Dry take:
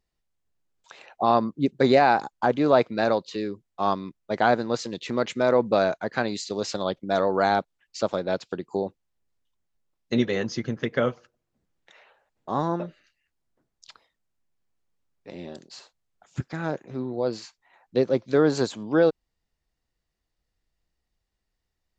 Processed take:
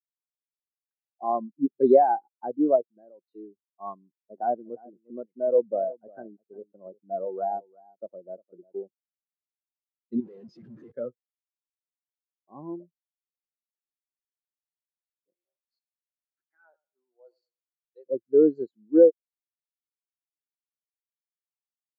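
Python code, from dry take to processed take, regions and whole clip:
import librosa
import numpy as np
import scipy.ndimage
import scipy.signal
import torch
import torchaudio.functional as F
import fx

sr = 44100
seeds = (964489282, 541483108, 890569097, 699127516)

y = fx.chain(x, sr, fx.high_shelf(hz=2500.0, db=-9.5),
    fx.level_steps(step_db=10), at=(2.76, 3.22))
y = fx.chain(y, sr, fx.lowpass(hz=1500.0, slope=12),
    fx.echo_single(ms=354, db=-10.0), at=(3.99, 8.83))
y = fx.chain(y, sr, fx.clip_1bit(),
    fx.resample_linear(factor=2), at=(10.2, 10.92))
y = fx.chain(y, sr, fx.highpass(hz=950.0, slope=12),
    fx.leveller(passes=1),
    fx.echo_warbled(ms=107, feedback_pct=50, rate_hz=2.8, cents=59, wet_db=-10.5), at=(15.33, 18.06))
y = scipy.signal.sosfilt(scipy.signal.butter(2, 86.0, 'highpass', fs=sr, output='sos'), y)
y = fx.peak_eq(y, sr, hz=350.0, db=4.0, octaves=0.26)
y = fx.spectral_expand(y, sr, expansion=2.5)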